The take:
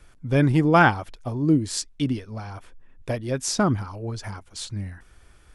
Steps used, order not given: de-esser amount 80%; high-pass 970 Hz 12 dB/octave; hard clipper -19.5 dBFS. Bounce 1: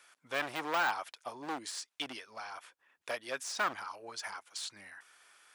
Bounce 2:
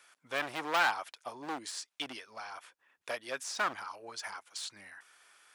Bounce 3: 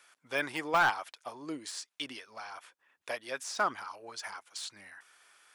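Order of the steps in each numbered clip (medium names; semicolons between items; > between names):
hard clipper > de-esser > high-pass; de-esser > hard clipper > high-pass; de-esser > high-pass > hard clipper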